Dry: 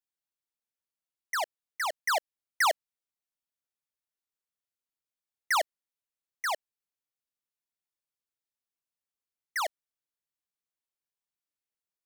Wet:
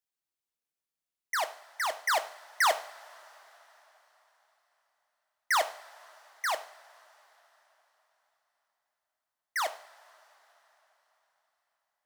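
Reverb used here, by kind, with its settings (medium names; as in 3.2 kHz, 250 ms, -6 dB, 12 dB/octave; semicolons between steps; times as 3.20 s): two-slope reverb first 0.48 s, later 4.2 s, from -19 dB, DRR 9 dB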